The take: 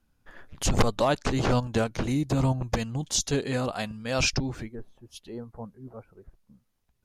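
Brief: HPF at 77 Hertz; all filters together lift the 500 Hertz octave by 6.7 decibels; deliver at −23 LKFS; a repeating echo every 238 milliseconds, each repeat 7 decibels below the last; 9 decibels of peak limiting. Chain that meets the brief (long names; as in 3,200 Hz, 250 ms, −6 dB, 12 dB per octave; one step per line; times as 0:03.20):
high-pass filter 77 Hz
parametric band 500 Hz +8 dB
brickwall limiter −14.5 dBFS
repeating echo 238 ms, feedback 45%, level −7 dB
level +3 dB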